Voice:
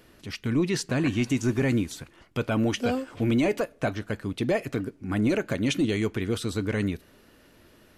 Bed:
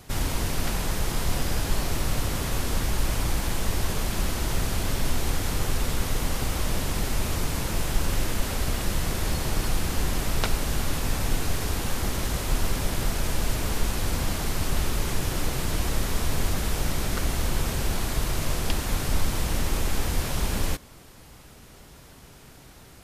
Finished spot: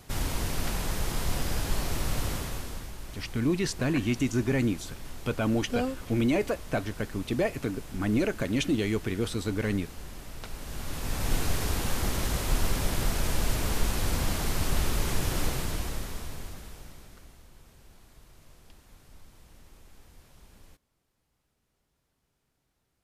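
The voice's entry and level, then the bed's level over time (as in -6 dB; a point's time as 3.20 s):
2.90 s, -2.0 dB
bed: 2.31 s -3.5 dB
2.98 s -16.5 dB
10.40 s -16.5 dB
11.35 s -1.5 dB
15.46 s -1.5 dB
17.47 s -28.5 dB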